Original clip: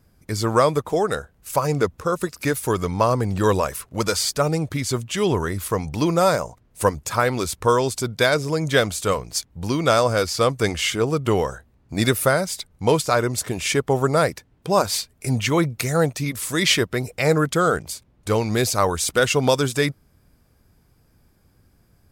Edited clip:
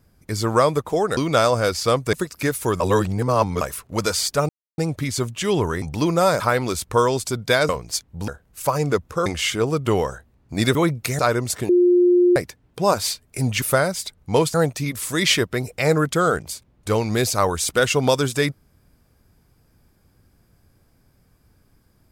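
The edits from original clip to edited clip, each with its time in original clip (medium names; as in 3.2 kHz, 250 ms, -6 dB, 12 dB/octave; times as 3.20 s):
1.17–2.15 s: swap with 9.70–10.66 s
2.82–3.63 s: reverse
4.51 s: insert silence 0.29 s
5.55–5.82 s: delete
6.40–7.11 s: delete
8.40–9.11 s: delete
12.15–13.07 s: swap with 15.50–15.94 s
13.57–14.24 s: bleep 355 Hz -11.5 dBFS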